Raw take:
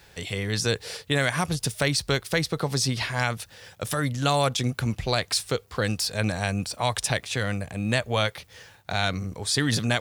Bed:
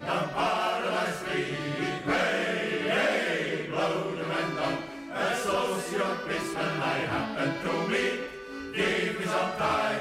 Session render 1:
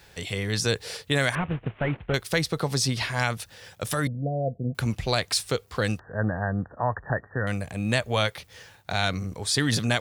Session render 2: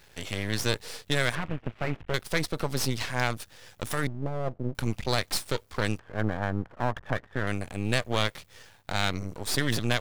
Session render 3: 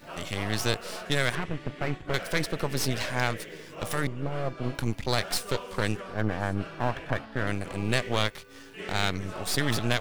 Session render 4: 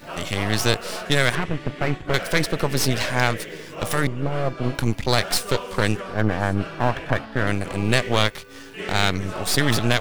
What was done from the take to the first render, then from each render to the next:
1.35–2.14 CVSD 16 kbps; 4.07–4.75 rippled Chebyshev low-pass 710 Hz, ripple 6 dB; 5.99–7.47 brick-wall FIR low-pass 1900 Hz
half-wave rectifier
add bed -12.5 dB
gain +7 dB; limiter -1 dBFS, peak gain reduction 1.5 dB

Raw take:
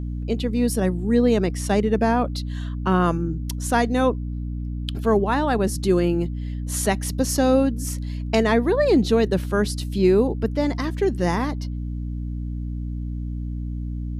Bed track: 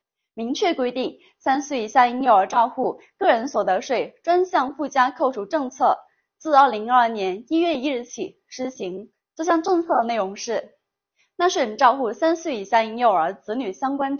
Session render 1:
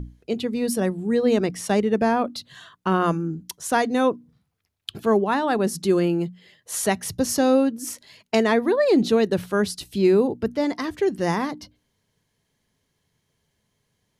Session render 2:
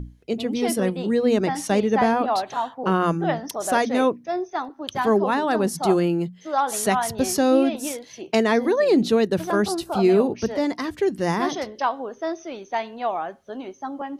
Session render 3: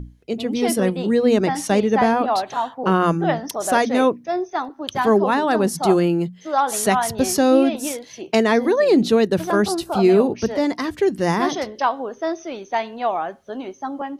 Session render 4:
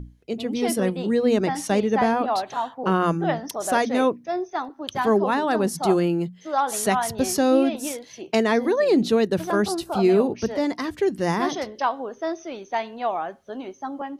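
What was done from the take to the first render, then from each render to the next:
notches 60/120/180/240/300 Hz
add bed track -8 dB
AGC gain up to 3.5 dB
gain -3.5 dB

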